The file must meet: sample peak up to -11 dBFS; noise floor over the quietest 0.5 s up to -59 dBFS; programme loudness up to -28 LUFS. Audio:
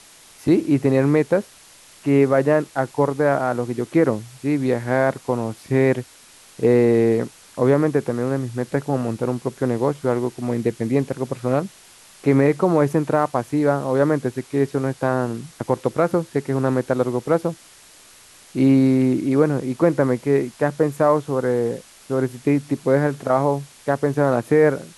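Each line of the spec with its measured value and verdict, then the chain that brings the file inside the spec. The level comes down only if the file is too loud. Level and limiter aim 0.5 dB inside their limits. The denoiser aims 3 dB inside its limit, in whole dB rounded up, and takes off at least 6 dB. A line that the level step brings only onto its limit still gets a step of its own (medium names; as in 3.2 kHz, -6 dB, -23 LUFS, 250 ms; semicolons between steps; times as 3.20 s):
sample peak -5.5 dBFS: fail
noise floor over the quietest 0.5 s -48 dBFS: fail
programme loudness -20.5 LUFS: fail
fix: noise reduction 6 dB, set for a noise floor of -48 dBFS; trim -8 dB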